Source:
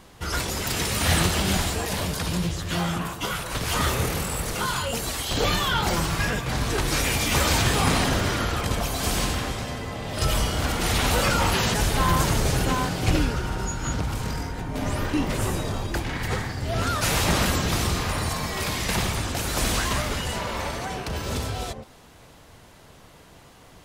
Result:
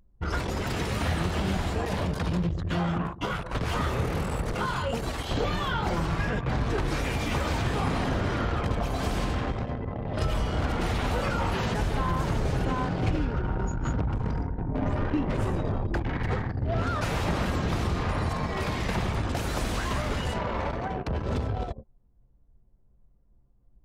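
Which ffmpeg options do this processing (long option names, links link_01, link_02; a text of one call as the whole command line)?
ffmpeg -i in.wav -filter_complex "[0:a]asettb=1/sr,asplit=3[link_01][link_02][link_03];[link_01]atrim=end=19.294[link_04];[link_02]atrim=start=19.29:end=20.34,asetpts=PTS-STARTPTS,afade=type=in:duration=0.004:curve=qsin,afade=type=out:start_time=1.046:duration=0.004:curve=qsin,highshelf=frequency=4400:gain=5.5[link_05];[link_03]atrim=start=20.336[link_06];[link_04][link_05]acrossfade=duration=0.004:curve1=hsin:curve2=qsin[link_07];[link_07][link_06]acrossfade=duration=0.004:curve1=qsin:curve2=hsin,anlmdn=39.8,acompressor=threshold=-24dB:ratio=6,lowpass=frequency=1400:poles=1,volume=2dB" out.wav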